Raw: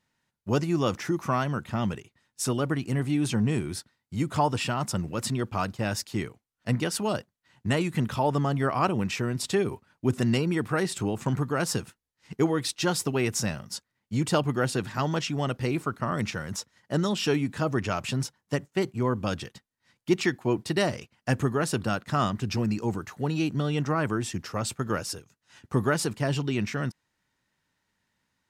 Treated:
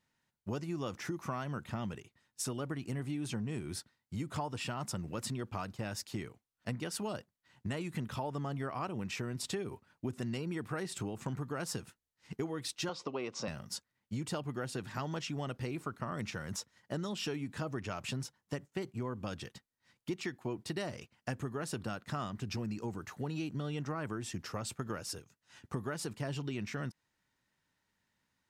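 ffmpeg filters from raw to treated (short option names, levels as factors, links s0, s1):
-filter_complex "[0:a]asettb=1/sr,asplit=3[s0][s1][s2];[s0]atrim=end=12.894[s3];[s1]atrim=start=12.89:end=13.48,asetpts=PTS-STARTPTS,afade=t=in:d=0.004:c=qsin,afade=t=out:st=0.586:d=0.004:c=qsin,highpass=230,equalizer=f=540:t=q:w=4:g=8,equalizer=f=1100:t=q:w=4:g=9,equalizer=f=1700:t=q:w=4:g=-8,lowpass=f=5300:w=0.5412,lowpass=f=5300:w=1.3066[s4];[s2]atrim=start=13.476[s5];[s3][s4]acrossfade=d=0.004:c1=hsin:c2=qsin[s6];[s6][s5]acrossfade=d=0.004:c1=qsin:c2=hsin,acompressor=threshold=0.0282:ratio=5,volume=0.631"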